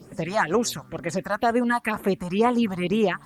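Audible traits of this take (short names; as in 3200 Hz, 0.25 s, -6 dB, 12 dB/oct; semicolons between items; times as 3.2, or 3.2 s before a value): phasing stages 4, 2.1 Hz, lowest notch 390–5000 Hz; a quantiser's noise floor 12-bit, dither none; Opus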